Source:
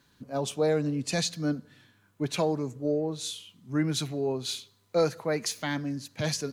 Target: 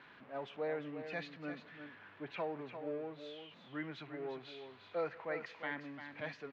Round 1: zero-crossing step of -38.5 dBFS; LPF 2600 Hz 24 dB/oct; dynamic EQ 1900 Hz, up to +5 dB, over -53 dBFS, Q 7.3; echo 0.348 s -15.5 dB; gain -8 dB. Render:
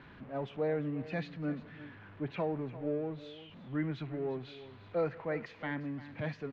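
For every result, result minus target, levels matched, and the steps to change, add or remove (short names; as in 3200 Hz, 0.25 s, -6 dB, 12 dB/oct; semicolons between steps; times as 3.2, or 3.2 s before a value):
echo-to-direct -6.5 dB; 1000 Hz band -4.0 dB
change: echo 0.348 s -9 dB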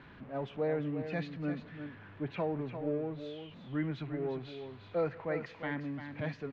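1000 Hz band -3.5 dB
add after dynamic EQ: HPF 790 Hz 6 dB/oct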